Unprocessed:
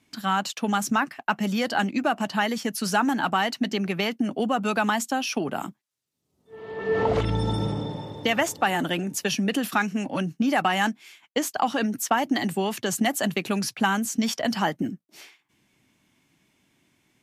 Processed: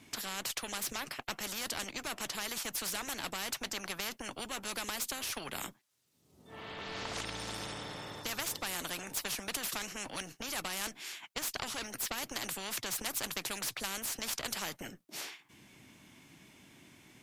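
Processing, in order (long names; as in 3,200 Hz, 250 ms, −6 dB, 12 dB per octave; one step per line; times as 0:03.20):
harmonic generator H 2 −12 dB, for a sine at −9 dBFS
every bin compressed towards the loudest bin 4 to 1
level −9 dB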